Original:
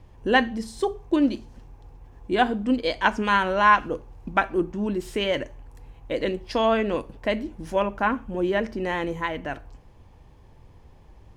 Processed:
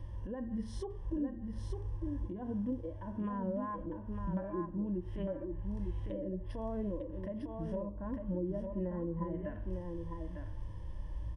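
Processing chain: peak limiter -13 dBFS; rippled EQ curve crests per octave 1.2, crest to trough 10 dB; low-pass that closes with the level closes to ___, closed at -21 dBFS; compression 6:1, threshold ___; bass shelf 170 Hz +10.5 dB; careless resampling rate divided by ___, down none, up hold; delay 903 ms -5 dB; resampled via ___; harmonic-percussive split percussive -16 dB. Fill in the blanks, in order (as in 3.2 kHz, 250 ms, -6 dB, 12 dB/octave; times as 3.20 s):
520 Hz, -37 dBFS, 3×, 22.05 kHz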